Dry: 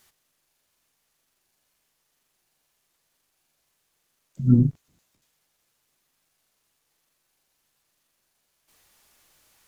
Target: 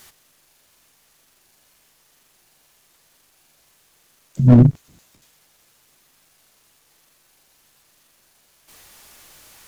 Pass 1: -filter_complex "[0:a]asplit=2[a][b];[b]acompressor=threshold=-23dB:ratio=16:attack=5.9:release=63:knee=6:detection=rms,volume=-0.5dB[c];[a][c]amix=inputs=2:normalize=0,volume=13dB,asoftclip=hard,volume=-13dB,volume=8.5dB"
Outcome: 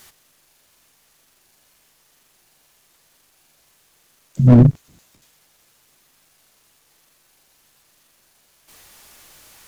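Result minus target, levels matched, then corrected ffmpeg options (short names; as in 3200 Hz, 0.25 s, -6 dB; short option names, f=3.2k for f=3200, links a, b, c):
compressor: peak gain reduction -8.5 dB
-filter_complex "[0:a]asplit=2[a][b];[b]acompressor=threshold=-32dB:ratio=16:attack=5.9:release=63:knee=6:detection=rms,volume=-0.5dB[c];[a][c]amix=inputs=2:normalize=0,volume=13dB,asoftclip=hard,volume=-13dB,volume=8.5dB"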